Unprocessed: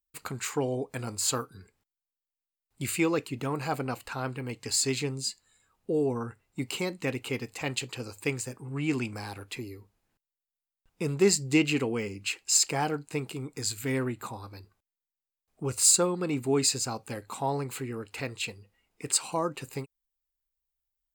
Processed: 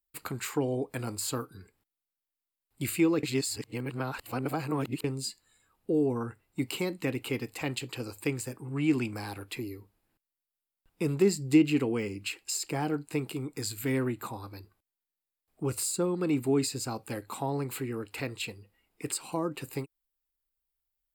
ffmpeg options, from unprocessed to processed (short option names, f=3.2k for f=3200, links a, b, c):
-filter_complex "[0:a]asplit=3[a][b][c];[a]atrim=end=3.232[d];[b]atrim=start=3.228:end=5.042,asetpts=PTS-STARTPTS,areverse[e];[c]atrim=start=5.038[f];[d][e]acrossfade=d=0.004:c1=hsin:c2=hsin[g];[g][f]acrossfade=d=0.004:c1=hsin:c2=hsin,equalizer=f=315:t=o:w=0.33:g=5,equalizer=f=6.3k:t=o:w=0.33:g=-7,equalizer=f=12.5k:t=o:w=0.33:g=7,acrossover=split=400[h][i];[i]acompressor=threshold=-32dB:ratio=4[j];[h][j]amix=inputs=2:normalize=0"